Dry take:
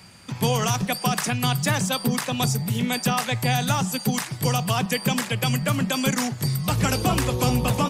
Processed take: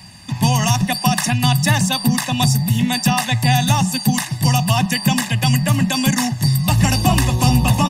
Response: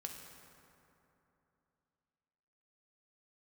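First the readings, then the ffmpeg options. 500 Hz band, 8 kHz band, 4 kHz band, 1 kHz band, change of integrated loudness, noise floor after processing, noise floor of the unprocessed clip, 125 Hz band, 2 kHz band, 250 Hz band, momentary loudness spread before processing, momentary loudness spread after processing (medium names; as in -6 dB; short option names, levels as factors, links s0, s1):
-0.5 dB, +6.0 dB, +7.0 dB, +6.0 dB, +7.0 dB, -30 dBFS, -37 dBFS, +8.5 dB, +5.5 dB, +7.0 dB, 3 LU, 3 LU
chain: -af "equalizer=f=1200:t=o:w=1.1:g=-3.5,aecho=1:1:1.1:0.8,volume=1.68"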